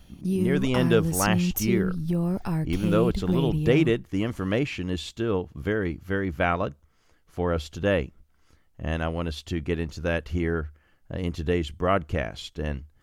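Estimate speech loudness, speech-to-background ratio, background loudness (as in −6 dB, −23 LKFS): −27.5 LKFS, 0.0 dB, −27.5 LKFS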